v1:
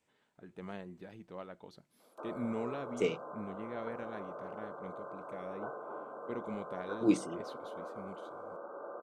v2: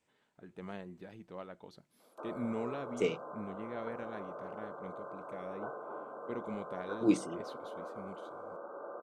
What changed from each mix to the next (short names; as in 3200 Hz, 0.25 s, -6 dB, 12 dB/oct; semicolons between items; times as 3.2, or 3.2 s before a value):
none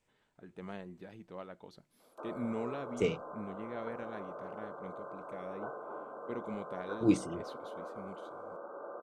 second voice: remove HPF 190 Hz